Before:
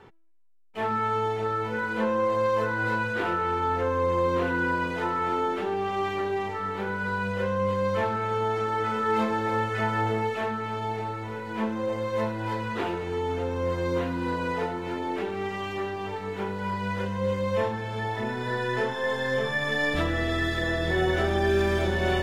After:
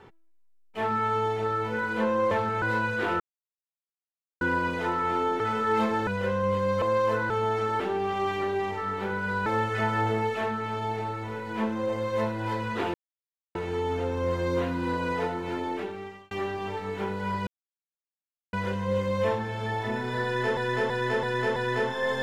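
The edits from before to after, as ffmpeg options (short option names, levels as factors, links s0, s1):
-filter_complex "[0:a]asplit=18[s0][s1][s2][s3][s4][s5][s6][s7][s8][s9][s10][s11][s12][s13][s14][s15][s16][s17];[s0]atrim=end=2.312[s18];[s1]atrim=start=7.978:end=8.292[s19];[s2]atrim=start=2.788:end=3.37,asetpts=PTS-STARTPTS,afade=t=out:st=0.578:d=0.004:c=hsin[s20];[s3]atrim=start=3.37:end=4.58,asetpts=PTS-STARTPTS,volume=0[s21];[s4]atrim=start=4.58:end=5.572,asetpts=PTS-STARTPTS,afade=t=in:d=0.004:c=hsin[s22];[s5]atrim=start=8.788:end=9.462[s23];[s6]atrim=start=7.228:end=7.982[s24];[s7]atrim=start=2.308:end=2.792[s25];[s8]atrim=start=8.288:end=8.792[s26];[s9]atrim=start=5.568:end=7.232[s27];[s10]atrim=start=9.458:end=12.94,asetpts=PTS-STARTPTS,afade=t=out:st=3.478:d=0.004:c=hsin,apad=pad_dur=0.61[s28];[s11]atrim=start=12.94:end=15.7,asetpts=PTS-STARTPTS,afade=t=in:d=0.004:c=hsin,afade=t=out:st=2.07:d=0.69[s29];[s12]atrim=start=15.7:end=16.86,asetpts=PTS-STARTPTS,afade=t=in:d=0.004:c=hsin,afade=t=out:st=1.156:d=0.004:c=hsin,apad=pad_dur=1.06[s30];[s13]atrim=start=16.86:end=18.902,asetpts=PTS-STARTPTS,afade=t=in:d=0.004:c=hsin[s31];[s14]atrim=start=18.568:end=18.902[s32];[s15]atrim=start=18.568:end=18.902[s33];[s16]atrim=start=18.568:end=18.902[s34];[s17]atrim=start=18.568[s35];[s18][s19]acrossfade=d=0.004:c1=hsin:c2=hsin[s36];[s20][s21][s22]concat=n=3:v=0:a=1[s37];[s36][s37]acrossfade=d=0.004:c1=hsin:c2=hsin[s38];[s38][s23]acrossfade=d=0.004:c1=hsin:c2=hsin[s39];[s39][s24]acrossfade=d=0.004:c1=hsin:c2=hsin[s40];[s40][s25]acrossfade=d=0.004:c1=hsin:c2=hsin[s41];[s41][s26]acrossfade=d=0.004:c1=hsin:c2=hsin[s42];[s42][s27]acrossfade=d=0.004:c1=hsin:c2=hsin[s43];[s28][s29][s30][s31]concat=n=4:v=0:a=1[s44];[s43][s44]acrossfade=d=0.004:c1=hsin:c2=hsin[s45];[s45][s32]acrossfade=d=0.004:c1=hsin:c2=hsin[s46];[s46][s33]acrossfade=d=0.004:c1=hsin:c2=hsin[s47];[s47][s34]acrossfade=d=0.004:c1=hsin:c2=hsin[s48];[s48][s35]acrossfade=d=0.004:c1=hsin:c2=hsin"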